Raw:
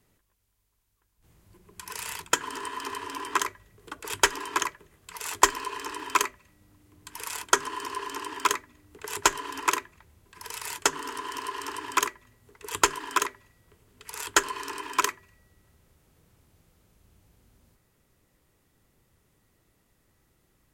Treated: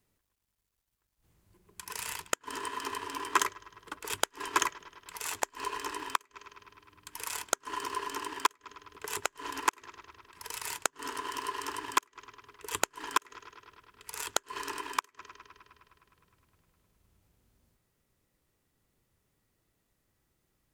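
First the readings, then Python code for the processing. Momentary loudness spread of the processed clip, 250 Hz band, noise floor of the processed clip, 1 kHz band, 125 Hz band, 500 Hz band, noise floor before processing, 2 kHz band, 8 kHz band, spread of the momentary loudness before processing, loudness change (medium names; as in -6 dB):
20 LU, -6.0 dB, -79 dBFS, -5.0 dB, -6.0 dB, -6.0 dB, -70 dBFS, -6.5 dB, -7.0 dB, 14 LU, -6.0 dB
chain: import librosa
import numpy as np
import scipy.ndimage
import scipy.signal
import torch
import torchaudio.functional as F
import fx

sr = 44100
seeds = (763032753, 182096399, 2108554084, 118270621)

p1 = fx.law_mismatch(x, sr, coded='A')
p2 = p1 + fx.echo_bbd(p1, sr, ms=103, stages=4096, feedback_pct=78, wet_db=-23.5, dry=0)
y = fx.gate_flip(p2, sr, shuts_db=-10.0, range_db=-33)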